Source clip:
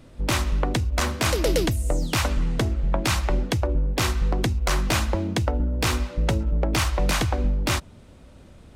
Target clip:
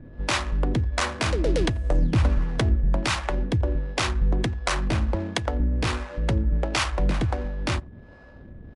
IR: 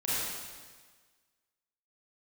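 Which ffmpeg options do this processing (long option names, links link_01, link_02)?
-filter_complex "[0:a]asplit=2[link_01][link_02];[link_02]adelay=87.46,volume=-22dB,highshelf=frequency=4000:gain=-1.97[link_03];[link_01][link_03]amix=inputs=2:normalize=0,asplit=2[link_04][link_05];[link_05]acompressor=threshold=-33dB:ratio=6,volume=1.5dB[link_06];[link_04][link_06]amix=inputs=2:normalize=0,aeval=exprs='val(0)+0.00631*sin(2*PI*1700*n/s)':channel_layout=same,acrossover=split=470[link_07][link_08];[link_07]aeval=exprs='val(0)*(1-0.7/2+0.7/2*cos(2*PI*1.4*n/s))':channel_layout=same[link_09];[link_08]aeval=exprs='val(0)*(1-0.7/2-0.7/2*cos(2*PI*1.4*n/s))':channel_layout=same[link_10];[link_09][link_10]amix=inputs=2:normalize=0,adynamicsmooth=sensitivity=7:basefreq=660,asettb=1/sr,asplit=3[link_11][link_12][link_13];[link_11]atrim=end=1.604[link_14];[link_12]atrim=start=1.6:end=2.77,asetpts=PTS-STARTPTS,afade=type=in:duration=0.004:curve=qsin,afade=type=out:start_time=1.166:duration=0.004:curve=qsin,lowshelf=frequency=250:gain=6[link_15];[link_13]atrim=start=2.766[link_16];[link_14][link_15]acrossfade=duration=0.004:curve1=hsin:curve2=qsin[link_17];[link_17][link_16]acrossfade=duration=0.004:curve1=qsin:curve2=hsin" -ar 24000 -c:a libmp3lame -b:a 80k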